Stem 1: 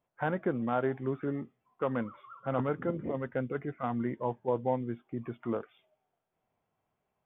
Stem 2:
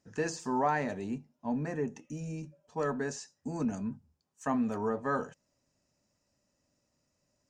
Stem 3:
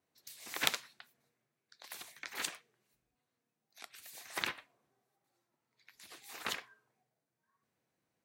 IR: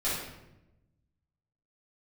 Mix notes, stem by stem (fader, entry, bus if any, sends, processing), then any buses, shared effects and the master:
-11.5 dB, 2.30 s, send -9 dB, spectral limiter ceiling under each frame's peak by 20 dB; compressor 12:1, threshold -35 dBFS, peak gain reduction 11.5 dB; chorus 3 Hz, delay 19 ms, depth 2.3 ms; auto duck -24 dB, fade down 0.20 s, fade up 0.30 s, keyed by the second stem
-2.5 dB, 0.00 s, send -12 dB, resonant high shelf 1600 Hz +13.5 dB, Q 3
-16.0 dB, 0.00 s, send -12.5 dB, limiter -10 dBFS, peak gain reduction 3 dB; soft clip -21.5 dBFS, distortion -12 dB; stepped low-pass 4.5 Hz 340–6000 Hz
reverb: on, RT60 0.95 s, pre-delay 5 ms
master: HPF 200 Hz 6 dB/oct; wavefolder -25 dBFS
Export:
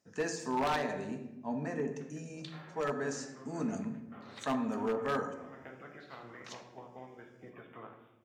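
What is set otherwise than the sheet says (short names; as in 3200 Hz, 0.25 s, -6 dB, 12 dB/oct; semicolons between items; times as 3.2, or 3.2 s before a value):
stem 1: missing chorus 3 Hz, delay 19 ms, depth 2.3 ms; stem 2: missing resonant high shelf 1600 Hz +13.5 dB, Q 3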